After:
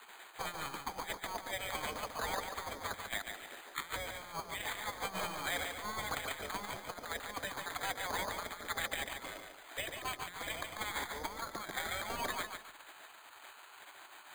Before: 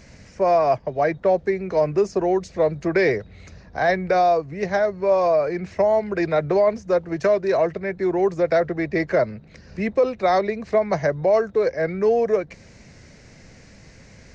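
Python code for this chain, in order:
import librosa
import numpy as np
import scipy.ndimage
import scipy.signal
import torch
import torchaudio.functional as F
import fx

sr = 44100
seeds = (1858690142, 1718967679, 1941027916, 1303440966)

p1 = fx.tracing_dist(x, sr, depth_ms=0.051)
p2 = fx.spec_gate(p1, sr, threshold_db=-20, keep='weak')
p3 = scipy.signal.sosfilt(scipy.signal.butter(2, 2500.0, 'lowpass', fs=sr, output='sos'), p2)
p4 = fx.low_shelf(p3, sr, hz=430.0, db=-9.5)
p5 = fx.over_compress(p4, sr, threshold_db=-43.0, ratio=-0.5)
p6 = p5 + fx.echo_feedback(p5, sr, ms=143, feedback_pct=29, wet_db=-6, dry=0)
p7 = np.repeat(scipy.signal.resample_poly(p6, 1, 8), 8)[:len(p6)]
y = F.gain(torch.from_numpy(p7), 3.5).numpy()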